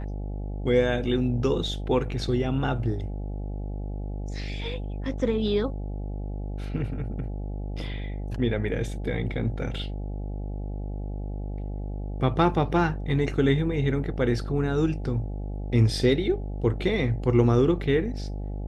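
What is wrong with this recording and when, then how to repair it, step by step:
mains buzz 50 Hz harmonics 17 −32 dBFS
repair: hum removal 50 Hz, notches 17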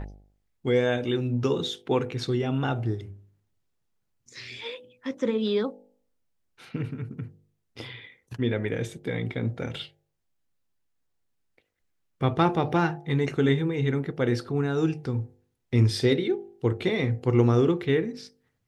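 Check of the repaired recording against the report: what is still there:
none of them is left

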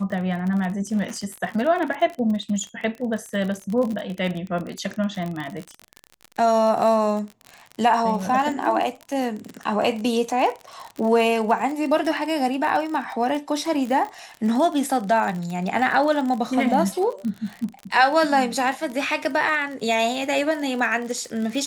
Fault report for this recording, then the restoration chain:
surface crackle 37 per second −27 dBFS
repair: click removal

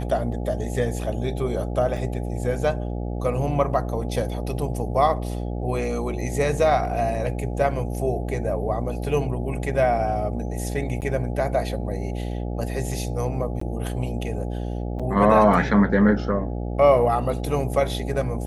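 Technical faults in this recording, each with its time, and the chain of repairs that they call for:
mains buzz 60 Hz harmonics 14 −28 dBFS
0:01.97: drop-out 4.1 ms
0:11.01–0:11.02: drop-out 9.3 ms
0:13.60–0:13.61: drop-out 14 ms
0:14.99–0:15.00: drop-out 6.1 ms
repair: hum removal 60 Hz, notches 14
repair the gap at 0:01.97, 4.1 ms
repair the gap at 0:11.01, 9.3 ms
repair the gap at 0:13.60, 14 ms
repair the gap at 0:14.99, 6.1 ms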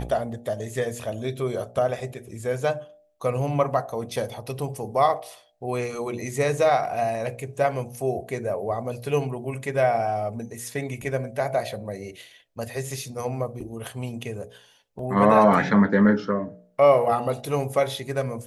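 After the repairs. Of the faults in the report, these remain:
none of them is left

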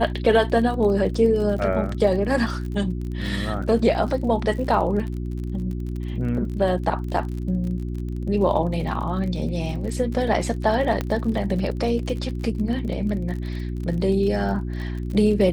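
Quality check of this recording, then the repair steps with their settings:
surface crackle 41 per second −31 dBFS
mains hum 60 Hz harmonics 6 −28 dBFS
0:11.01: click −11 dBFS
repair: click removal
hum removal 60 Hz, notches 6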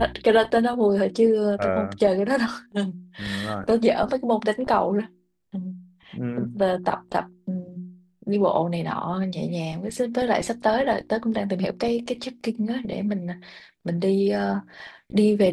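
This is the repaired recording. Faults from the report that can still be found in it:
0:11.01: click

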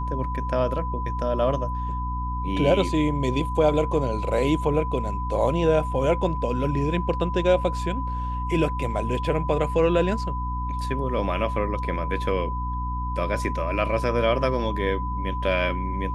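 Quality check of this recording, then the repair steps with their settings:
mains hum 60 Hz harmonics 5 −29 dBFS
whistle 1,000 Hz −30 dBFS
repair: notch filter 1,000 Hz, Q 30
hum removal 60 Hz, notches 5

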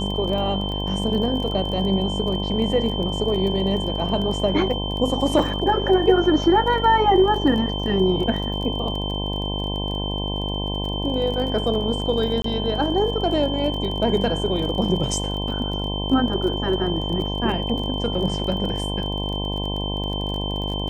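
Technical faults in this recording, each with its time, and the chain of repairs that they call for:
mains buzz 50 Hz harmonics 21 −27 dBFS
surface crackle 25 per second −29 dBFS
whistle 3,100 Hz −29 dBFS
0:12.42–0:12.44: drop-out 23 ms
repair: click removal
notch filter 3,100 Hz, Q 30
hum removal 50 Hz, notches 21
repair the gap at 0:12.42, 23 ms

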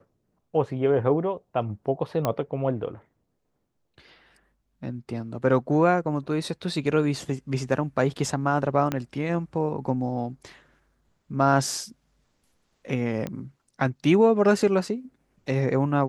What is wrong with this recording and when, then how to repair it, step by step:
0:02.25: click −11 dBFS
0:08.92: click −12 dBFS
0:13.27: click −18 dBFS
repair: click removal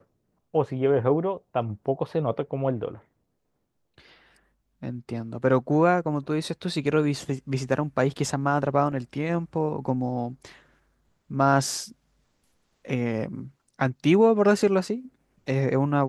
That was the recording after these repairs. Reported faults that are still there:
0:08.92: click

